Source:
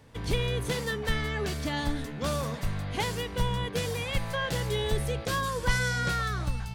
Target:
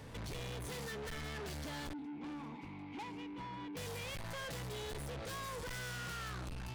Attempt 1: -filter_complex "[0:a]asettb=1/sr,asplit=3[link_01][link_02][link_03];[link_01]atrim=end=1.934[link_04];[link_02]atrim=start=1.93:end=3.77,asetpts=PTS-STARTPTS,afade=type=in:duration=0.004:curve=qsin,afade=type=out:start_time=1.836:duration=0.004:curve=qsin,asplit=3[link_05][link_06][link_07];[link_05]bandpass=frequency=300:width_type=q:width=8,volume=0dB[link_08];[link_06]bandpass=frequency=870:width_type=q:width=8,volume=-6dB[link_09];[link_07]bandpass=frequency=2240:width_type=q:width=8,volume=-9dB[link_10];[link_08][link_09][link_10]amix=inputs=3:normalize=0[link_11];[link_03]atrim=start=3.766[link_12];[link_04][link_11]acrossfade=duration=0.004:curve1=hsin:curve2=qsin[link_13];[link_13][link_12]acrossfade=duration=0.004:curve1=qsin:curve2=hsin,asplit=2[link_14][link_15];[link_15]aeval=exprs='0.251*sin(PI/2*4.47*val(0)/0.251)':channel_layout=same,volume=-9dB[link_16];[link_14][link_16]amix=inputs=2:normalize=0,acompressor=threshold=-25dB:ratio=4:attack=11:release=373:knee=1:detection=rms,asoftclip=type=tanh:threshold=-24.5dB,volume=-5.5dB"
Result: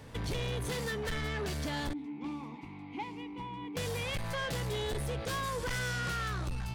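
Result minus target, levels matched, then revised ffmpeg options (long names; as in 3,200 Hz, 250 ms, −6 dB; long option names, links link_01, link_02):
soft clipping: distortion −11 dB
-filter_complex "[0:a]asettb=1/sr,asplit=3[link_01][link_02][link_03];[link_01]atrim=end=1.934[link_04];[link_02]atrim=start=1.93:end=3.77,asetpts=PTS-STARTPTS,afade=type=in:duration=0.004:curve=qsin,afade=type=out:start_time=1.836:duration=0.004:curve=qsin,asplit=3[link_05][link_06][link_07];[link_05]bandpass=frequency=300:width_type=q:width=8,volume=0dB[link_08];[link_06]bandpass=frequency=870:width_type=q:width=8,volume=-6dB[link_09];[link_07]bandpass=frequency=2240:width_type=q:width=8,volume=-9dB[link_10];[link_08][link_09][link_10]amix=inputs=3:normalize=0[link_11];[link_03]atrim=start=3.766[link_12];[link_04][link_11]acrossfade=duration=0.004:curve1=hsin:curve2=qsin[link_13];[link_13][link_12]acrossfade=duration=0.004:curve1=qsin:curve2=hsin,asplit=2[link_14][link_15];[link_15]aeval=exprs='0.251*sin(PI/2*4.47*val(0)/0.251)':channel_layout=same,volume=-9dB[link_16];[link_14][link_16]amix=inputs=2:normalize=0,acompressor=threshold=-25dB:ratio=4:attack=11:release=373:knee=1:detection=rms,asoftclip=type=tanh:threshold=-36.5dB,volume=-5.5dB"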